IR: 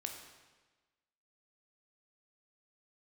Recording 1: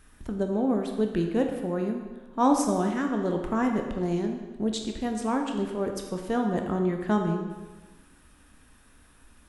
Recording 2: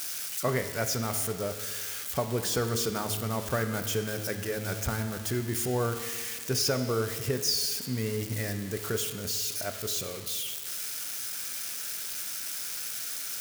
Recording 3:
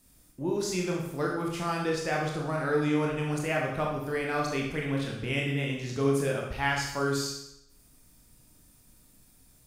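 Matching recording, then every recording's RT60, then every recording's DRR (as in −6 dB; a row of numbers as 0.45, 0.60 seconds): 1; 1.3, 1.7, 0.80 seconds; 3.0, 7.0, −1.5 decibels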